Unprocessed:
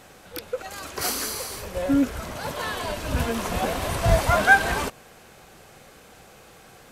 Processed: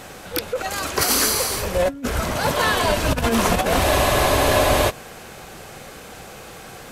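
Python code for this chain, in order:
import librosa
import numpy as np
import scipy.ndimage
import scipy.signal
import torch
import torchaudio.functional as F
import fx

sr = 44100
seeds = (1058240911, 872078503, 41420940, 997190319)

y = fx.over_compress(x, sr, threshold_db=-27.0, ratio=-0.5)
y = fx.spec_freeze(y, sr, seeds[0], at_s=3.86, hold_s=1.02)
y = y * librosa.db_to_amplitude(7.0)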